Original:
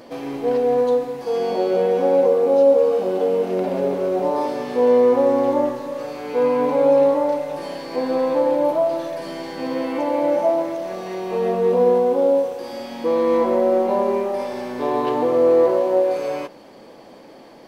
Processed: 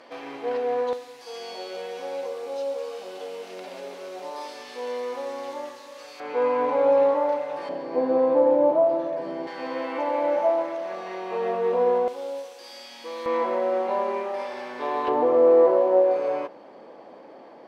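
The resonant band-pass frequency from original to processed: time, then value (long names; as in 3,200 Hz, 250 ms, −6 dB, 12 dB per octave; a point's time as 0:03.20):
resonant band-pass, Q 0.64
1,800 Hz
from 0:00.93 5,000 Hz
from 0:06.20 1,300 Hz
from 0:07.69 490 Hz
from 0:09.47 1,400 Hz
from 0:12.08 5,100 Hz
from 0:13.26 1,800 Hz
from 0:15.08 760 Hz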